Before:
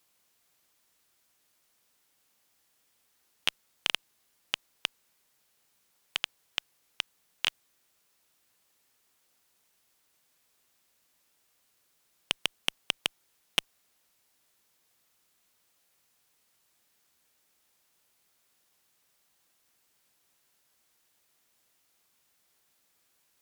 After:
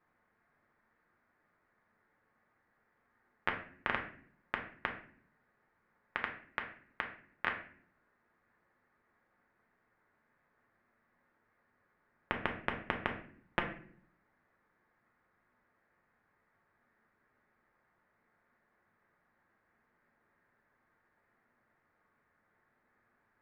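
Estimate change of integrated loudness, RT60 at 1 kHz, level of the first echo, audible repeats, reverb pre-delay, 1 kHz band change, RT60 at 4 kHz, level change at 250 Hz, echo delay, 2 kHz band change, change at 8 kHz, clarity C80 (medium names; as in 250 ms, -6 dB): -6.0 dB, 0.45 s, no echo, no echo, 5 ms, +5.5 dB, 0.35 s, +6.5 dB, no echo, -0.5 dB, under -30 dB, 12.5 dB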